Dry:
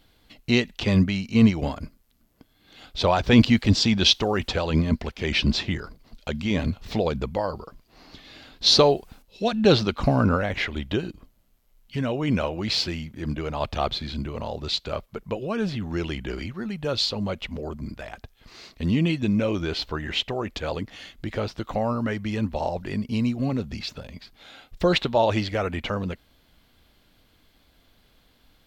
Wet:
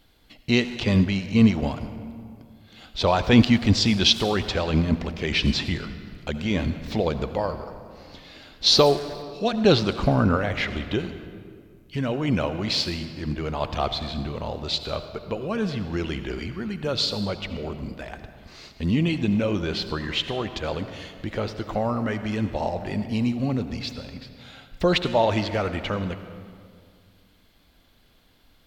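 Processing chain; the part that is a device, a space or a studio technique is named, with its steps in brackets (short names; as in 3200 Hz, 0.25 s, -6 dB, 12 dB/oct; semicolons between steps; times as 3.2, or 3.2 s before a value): saturated reverb return (on a send at -8.5 dB: reverb RT60 2.0 s, pre-delay 65 ms + soft clip -20.5 dBFS, distortion -10 dB)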